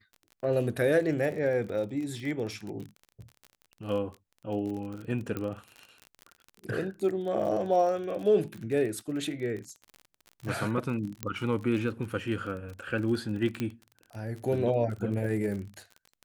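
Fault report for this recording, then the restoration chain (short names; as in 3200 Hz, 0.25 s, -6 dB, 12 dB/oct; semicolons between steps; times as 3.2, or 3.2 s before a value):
crackle 38/s -36 dBFS
5.37 pop -20 dBFS
11.23 pop -15 dBFS
13.6 pop -18 dBFS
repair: de-click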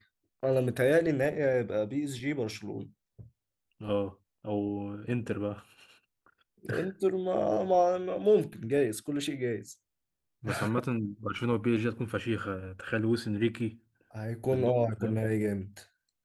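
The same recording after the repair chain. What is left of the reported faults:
13.6 pop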